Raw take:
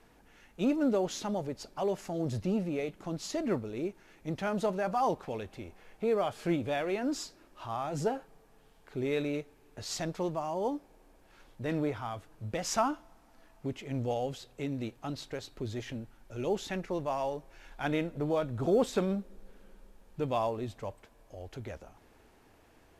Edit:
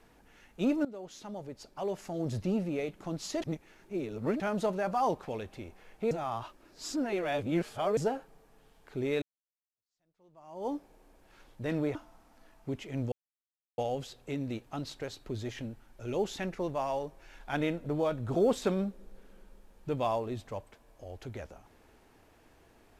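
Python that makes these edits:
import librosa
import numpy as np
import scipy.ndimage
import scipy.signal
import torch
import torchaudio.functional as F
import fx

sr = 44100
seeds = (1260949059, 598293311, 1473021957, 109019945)

y = fx.edit(x, sr, fx.fade_in_from(start_s=0.85, length_s=1.55, floor_db=-19.0),
    fx.reverse_span(start_s=3.42, length_s=0.98),
    fx.reverse_span(start_s=6.11, length_s=1.86),
    fx.fade_in_span(start_s=9.22, length_s=1.49, curve='exp'),
    fx.cut(start_s=11.95, length_s=0.97),
    fx.insert_silence(at_s=14.09, length_s=0.66), tone=tone)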